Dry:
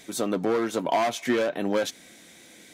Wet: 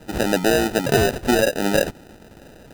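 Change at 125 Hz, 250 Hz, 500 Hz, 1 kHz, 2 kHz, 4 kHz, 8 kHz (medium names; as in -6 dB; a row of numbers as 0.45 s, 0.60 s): +13.0 dB, +6.0 dB, +6.0 dB, +3.0 dB, +9.5 dB, +8.5 dB, +8.0 dB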